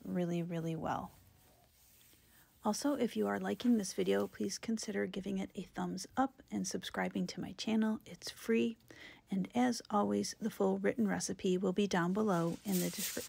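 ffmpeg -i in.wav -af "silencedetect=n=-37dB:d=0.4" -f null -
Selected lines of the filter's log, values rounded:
silence_start: 1.05
silence_end: 2.66 | silence_duration: 1.61
silence_start: 8.71
silence_end: 9.32 | silence_duration: 0.62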